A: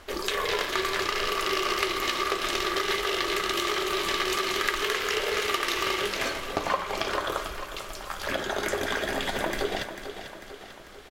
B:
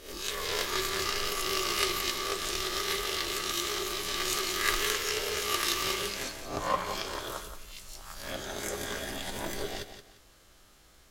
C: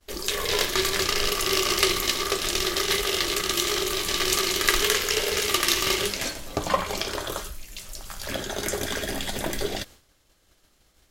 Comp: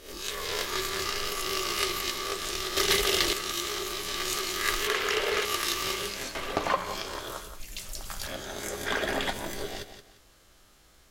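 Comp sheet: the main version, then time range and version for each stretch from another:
B
2.77–3.33 from C
4.87–5.45 from A
6.35–6.76 from A
7.6–8.27 from C
8.86–9.33 from A

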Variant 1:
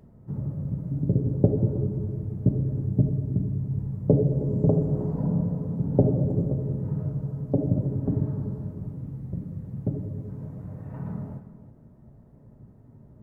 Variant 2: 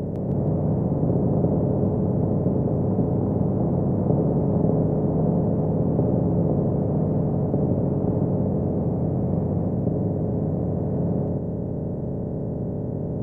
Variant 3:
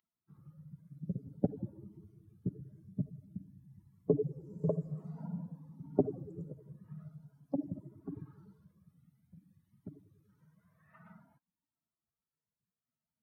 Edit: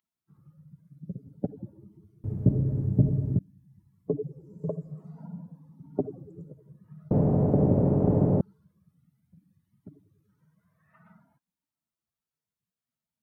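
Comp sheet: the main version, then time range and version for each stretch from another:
3
2.24–3.39 from 1
7.11–8.41 from 2

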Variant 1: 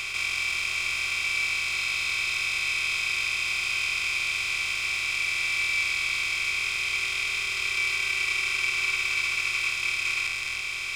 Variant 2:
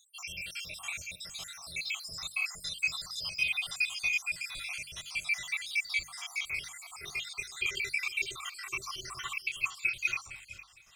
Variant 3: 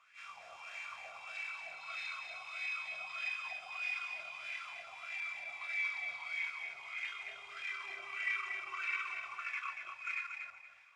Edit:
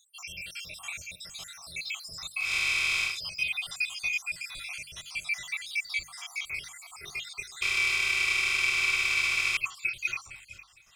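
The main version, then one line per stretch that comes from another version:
2
2.46–3.11 from 1, crossfade 0.16 s
7.62–9.57 from 1
not used: 3

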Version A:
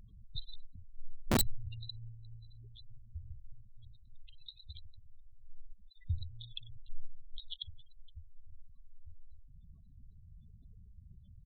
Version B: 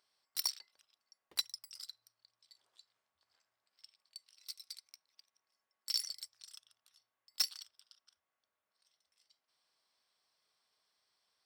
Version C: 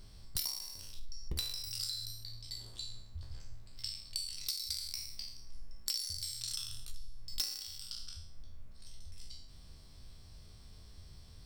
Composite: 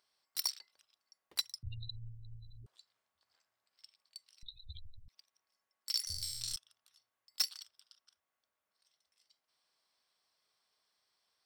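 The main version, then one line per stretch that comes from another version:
B
1.63–2.66 from A
4.43–5.08 from A
6.07–6.56 from C

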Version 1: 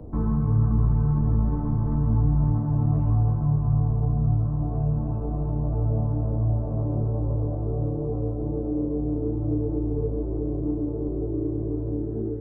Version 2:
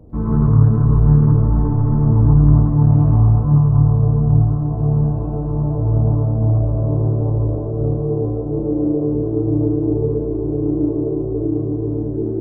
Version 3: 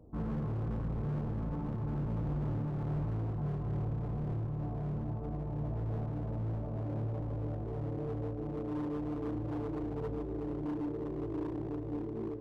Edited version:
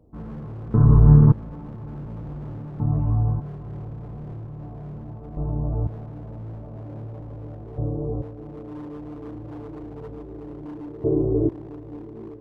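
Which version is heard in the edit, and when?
3
0.74–1.32 from 2
2.8–3.4 from 1
5.37–5.87 from 1
7.78–8.22 from 1
11.04–11.49 from 2

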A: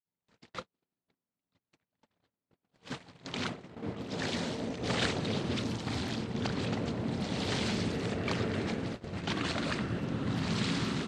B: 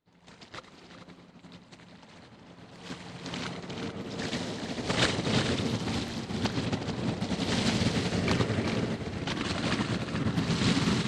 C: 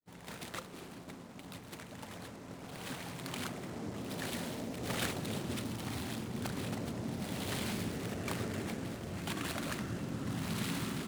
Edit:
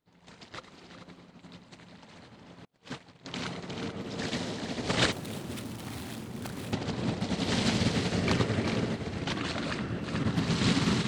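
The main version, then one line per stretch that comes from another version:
B
2.65–3.35 from A
5.12–6.73 from C
9.36–10.04 from A

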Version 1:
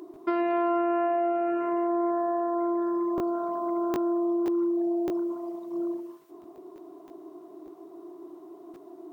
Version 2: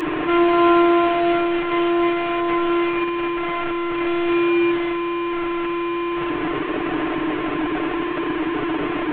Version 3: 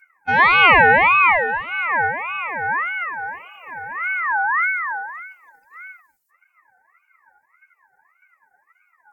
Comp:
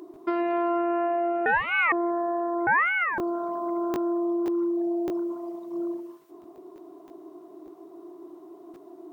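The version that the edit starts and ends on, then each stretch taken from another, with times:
1
1.46–1.92 from 3
2.67–3.18 from 3
not used: 2

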